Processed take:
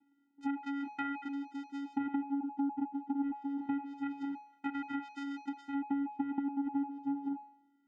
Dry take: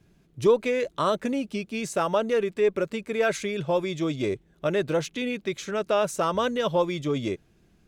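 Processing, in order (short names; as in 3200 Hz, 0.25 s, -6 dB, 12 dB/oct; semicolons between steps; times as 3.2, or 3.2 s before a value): LFO band-pass sine 0.26 Hz 510–1500 Hz; vocoder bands 4, square 280 Hz; compressor 5:1, threshold -40 dBFS, peak gain reduction 18 dB; de-hum 210 Hz, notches 29; treble ducked by the level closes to 2000 Hz, closed at -40 dBFS; gain +8 dB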